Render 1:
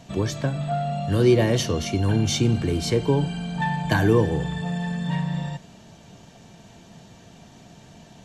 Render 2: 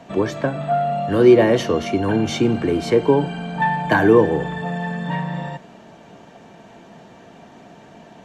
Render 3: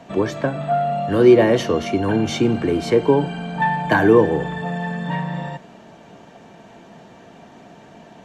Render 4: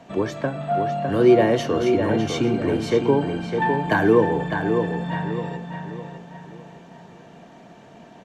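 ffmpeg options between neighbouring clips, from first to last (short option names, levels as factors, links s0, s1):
-filter_complex "[0:a]acrossover=split=220 2400:gain=0.178 1 0.2[s0][s1][s2];[s0][s1][s2]amix=inputs=3:normalize=0,volume=2.51"
-af anull
-filter_complex "[0:a]asplit=2[s0][s1];[s1]adelay=606,lowpass=f=4000:p=1,volume=0.501,asplit=2[s2][s3];[s3]adelay=606,lowpass=f=4000:p=1,volume=0.39,asplit=2[s4][s5];[s5]adelay=606,lowpass=f=4000:p=1,volume=0.39,asplit=2[s6][s7];[s7]adelay=606,lowpass=f=4000:p=1,volume=0.39,asplit=2[s8][s9];[s9]adelay=606,lowpass=f=4000:p=1,volume=0.39[s10];[s0][s2][s4][s6][s8][s10]amix=inputs=6:normalize=0,volume=0.668"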